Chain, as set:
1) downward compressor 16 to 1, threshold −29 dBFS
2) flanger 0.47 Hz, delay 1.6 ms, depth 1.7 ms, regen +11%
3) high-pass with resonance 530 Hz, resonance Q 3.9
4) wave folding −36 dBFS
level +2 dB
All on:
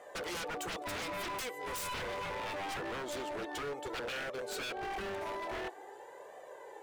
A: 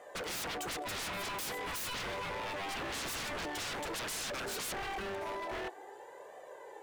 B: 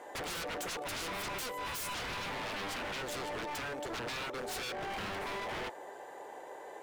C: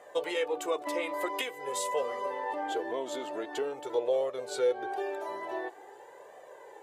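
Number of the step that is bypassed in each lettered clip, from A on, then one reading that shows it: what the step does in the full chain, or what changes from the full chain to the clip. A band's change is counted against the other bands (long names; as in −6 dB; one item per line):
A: 1, average gain reduction 4.0 dB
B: 2, 500 Hz band −3.0 dB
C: 4, change in crest factor +10.0 dB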